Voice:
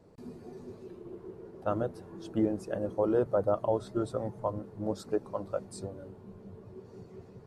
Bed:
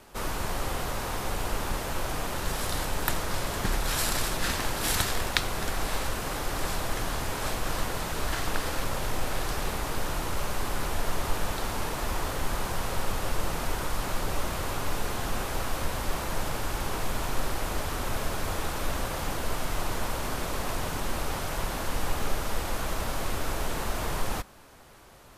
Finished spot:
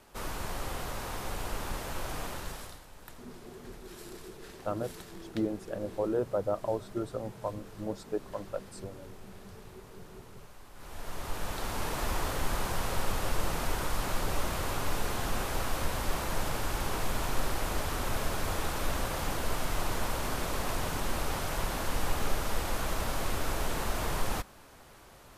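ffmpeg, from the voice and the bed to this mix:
ffmpeg -i stem1.wav -i stem2.wav -filter_complex "[0:a]adelay=3000,volume=-3dB[link_01];[1:a]volume=15dB,afade=type=out:start_time=2.25:duration=0.55:silence=0.149624,afade=type=in:start_time=10.74:duration=1.25:silence=0.0944061[link_02];[link_01][link_02]amix=inputs=2:normalize=0" out.wav

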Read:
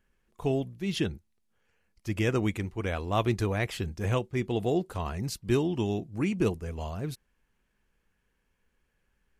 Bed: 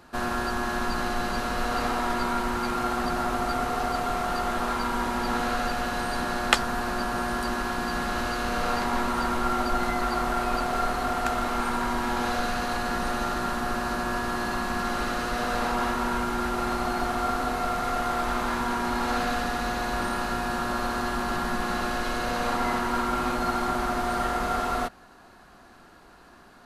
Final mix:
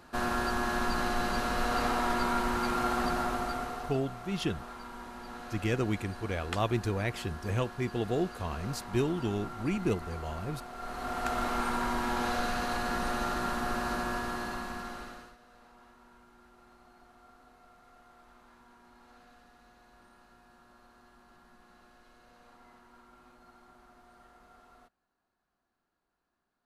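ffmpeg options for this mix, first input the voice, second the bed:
ffmpeg -i stem1.wav -i stem2.wav -filter_complex "[0:a]adelay=3450,volume=-3dB[link_01];[1:a]volume=10.5dB,afade=type=out:start_time=3.05:duration=0.94:silence=0.188365,afade=type=in:start_time=10.77:duration=0.65:silence=0.223872,afade=type=out:start_time=13.95:duration=1.42:silence=0.0421697[link_02];[link_01][link_02]amix=inputs=2:normalize=0" out.wav

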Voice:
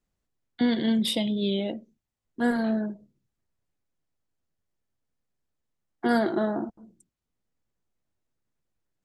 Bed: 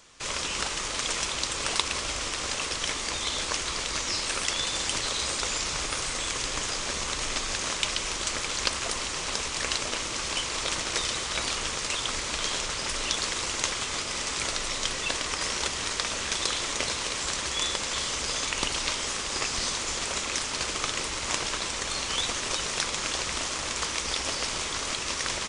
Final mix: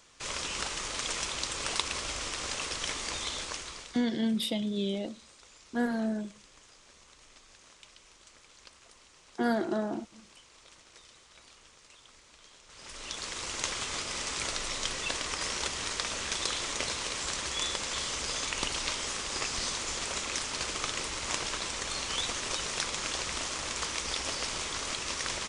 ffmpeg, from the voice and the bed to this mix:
ffmpeg -i stem1.wav -i stem2.wav -filter_complex "[0:a]adelay=3350,volume=-5dB[link_01];[1:a]volume=18dB,afade=type=out:start_time=3.18:duration=0.87:silence=0.0794328,afade=type=in:start_time=12.65:duration=1.12:silence=0.0749894[link_02];[link_01][link_02]amix=inputs=2:normalize=0" out.wav

